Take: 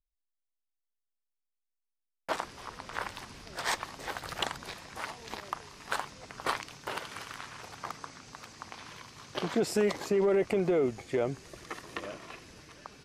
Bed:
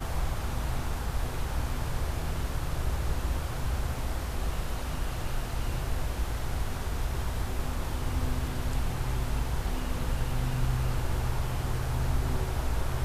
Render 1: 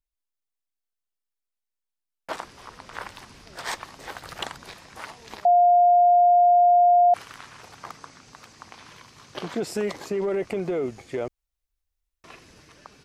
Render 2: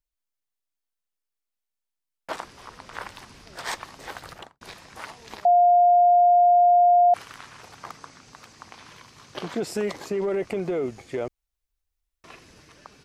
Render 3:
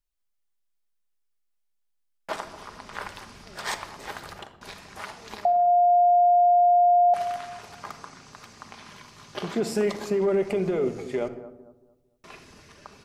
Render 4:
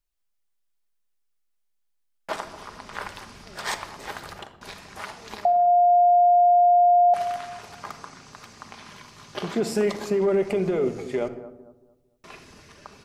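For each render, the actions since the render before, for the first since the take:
5.45–7.14 bleep 706 Hz -13 dBFS; 11.28–12.24 room tone
4.21–4.61 studio fade out
analogue delay 0.225 s, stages 2048, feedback 32%, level -15 dB; shoebox room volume 2700 m³, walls furnished, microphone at 1.3 m
gain +1.5 dB

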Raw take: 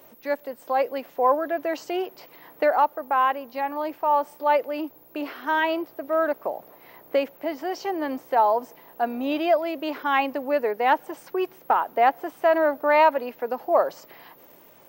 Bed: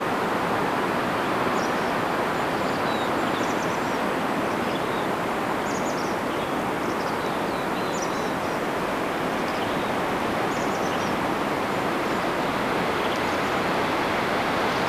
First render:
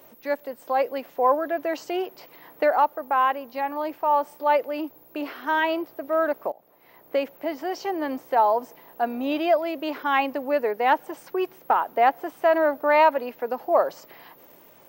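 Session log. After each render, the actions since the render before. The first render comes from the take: 6.52–7.34 fade in, from -19 dB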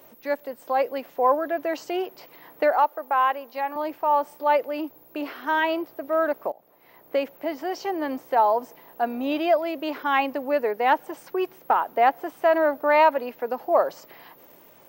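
2.72–3.76 HPF 350 Hz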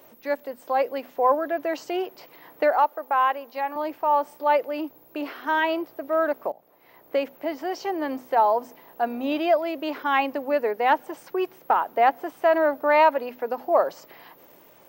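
bell 13000 Hz -2.5 dB 0.77 oct; notches 50/100/150/200/250 Hz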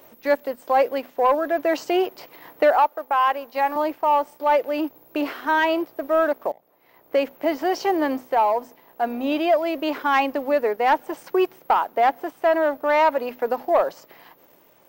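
sample leveller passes 1; vocal rider within 3 dB 0.5 s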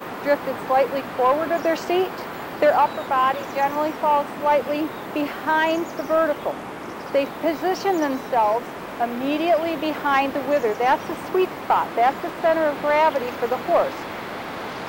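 add bed -7.5 dB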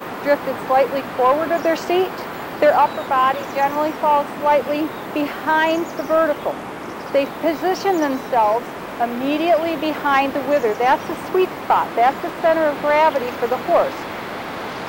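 gain +3 dB

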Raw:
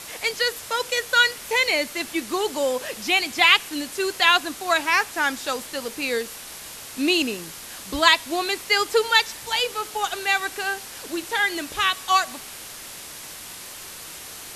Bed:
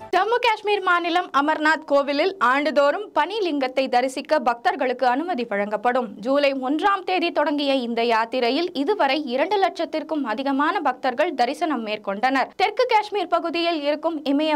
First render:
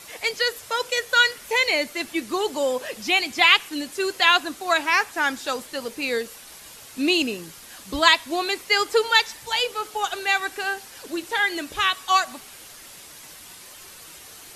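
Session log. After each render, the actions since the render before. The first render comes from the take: denoiser 7 dB, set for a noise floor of -39 dBFS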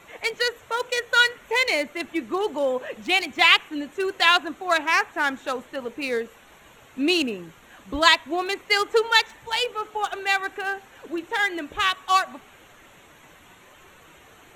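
Wiener smoothing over 9 samples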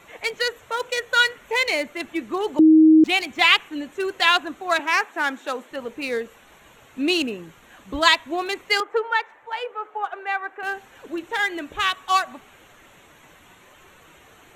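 2.59–3.04 bleep 315 Hz -8.5 dBFS; 4.79–5.71 HPF 210 Hz 24 dB/oct; 8.8–10.63 three-band isolator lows -21 dB, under 380 Hz, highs -21 dB, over 2100 Hz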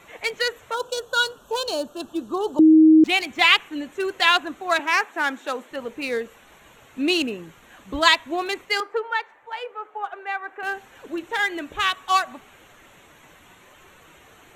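0.74–2.74 Butterworth band-stop 2100 Hz, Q 1.2; 8.65–10.48 resonator 400 Hz, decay 0.35 s, mix 30%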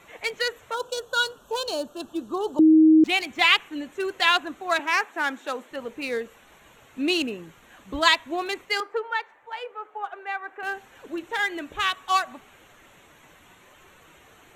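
gain -2.5 dB

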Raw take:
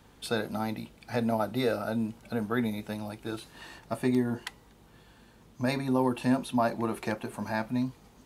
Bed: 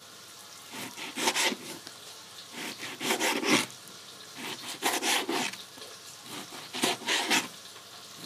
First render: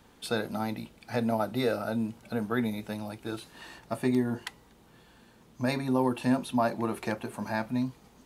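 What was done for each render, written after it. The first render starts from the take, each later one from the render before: de-hum 50 Hz, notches 3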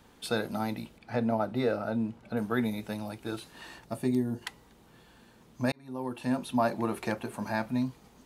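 0.98–2.37 LPF 2200 Hz 6 dB/oct; 3.84–4.41 bell 1500 Hz -5.5 dB -> -13 dB 2.7 oct; 5.72–6.62 fade in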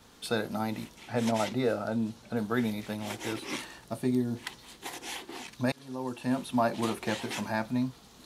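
add bed -12 dB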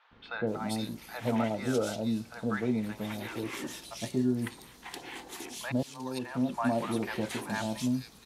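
three bands offset in time mids, lows, highs 0.11/0.47 s, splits 760/3000 Hz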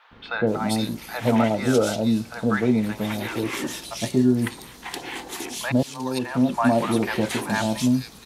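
gain +9.5 dB

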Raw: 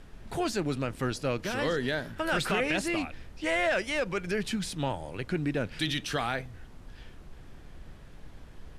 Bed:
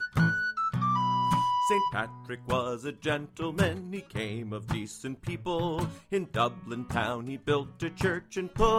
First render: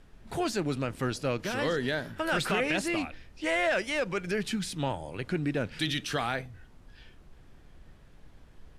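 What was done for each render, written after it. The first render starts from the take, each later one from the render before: noise print and reduce 6 dB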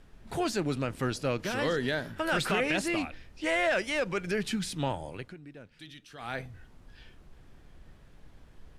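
5.07–6.45 dip -18 dB, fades 0.28 s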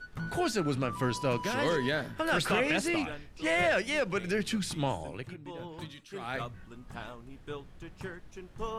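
add bed -13.5 dB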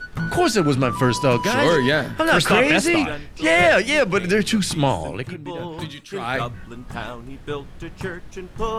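gain +12 dB

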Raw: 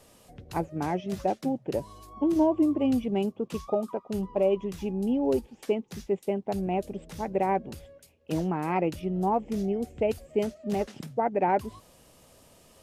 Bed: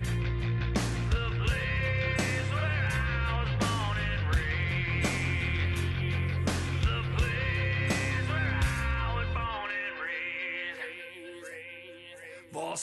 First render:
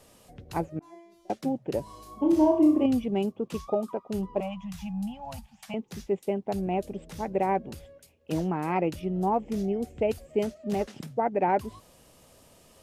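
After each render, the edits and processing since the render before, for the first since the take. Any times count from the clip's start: 0.79–1.3 resonator 340 Hz, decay 0.87 s, mix 100%; 1.83–2.86 flutter echo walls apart 5.6 m, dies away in 0.44 s; 4.4–5.74 Chebyshev band-stop 200–700 Hz, order 3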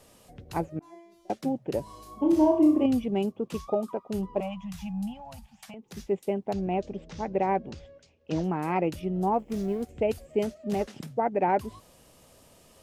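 5.13–5.97 compressor, threshold -40 dBFS; 6.53–8.44 steep low-pass 6600 Hz; 9.39–9.89 G.711 law mismatch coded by A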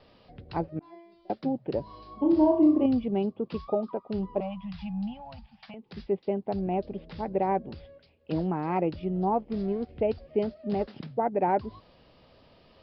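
steep low-pass 5000 Hz 96 dB/oct; dynamic EQ 2500 Hz, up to -6 dB, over -47 dBFS, Q 0.95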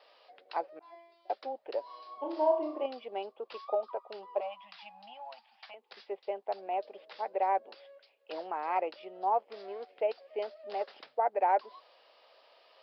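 HPF 550 Hz 24 dB/oct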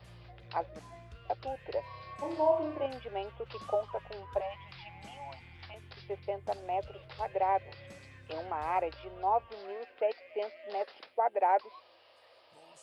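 add bed -23.5 dB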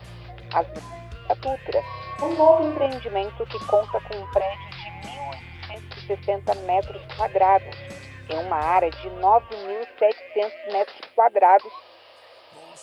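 gain +12 dB

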